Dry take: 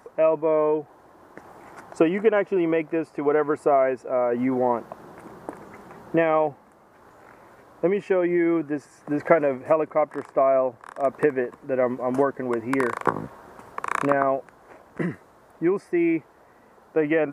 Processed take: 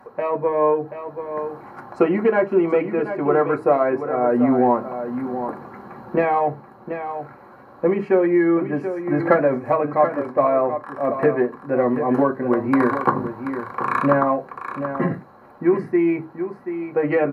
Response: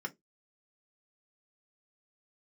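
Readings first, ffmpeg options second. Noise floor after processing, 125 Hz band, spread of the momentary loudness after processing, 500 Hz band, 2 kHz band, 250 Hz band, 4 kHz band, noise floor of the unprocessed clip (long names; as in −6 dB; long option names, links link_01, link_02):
−46 dBFS, +6.0 dB, 12 LU, +3.0 dB, +2.0 dB, +5.0 dB, can't be measured, −54 dBFS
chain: -filter_complex "[0:a]equalizer=frequency=8000:width=1.4:gain=-13,asplit=2[link_01][link_02];[link_02]asoftclip=type=tanh:threshold=-17.5dB,volume=-10dB[link_03];[link_01][link_03]amix=inputs=2:normalize=0,aecho=1:1:732:0.335[link_04];[1:a]atrim=start_sample=2205,asetrate=33957,aresample=44100[link_05];[link_04][link_05]afir=irnorm=-1:irlink=0,volume=-1dB"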